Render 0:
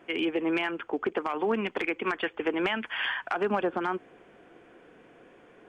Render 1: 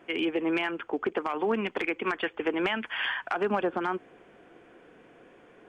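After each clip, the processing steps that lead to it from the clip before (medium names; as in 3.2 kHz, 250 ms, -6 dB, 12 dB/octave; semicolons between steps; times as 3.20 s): no audible change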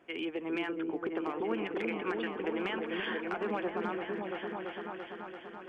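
delay with an opening low-pass 338 ms, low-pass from 400 Hz, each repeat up 1 oct, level 0 dB; trim -8 dB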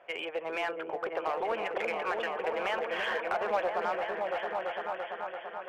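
low-pass 3.5 kHz; resonant low shelf 420 Hz -11.5 dB, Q 3; in parallel at -11.5 dB: wavefolder -35.5 dBFS; on the sum: trim +3 dB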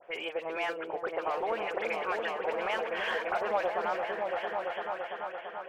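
phase dispersion highs, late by 55 ms, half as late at 2.6 kHz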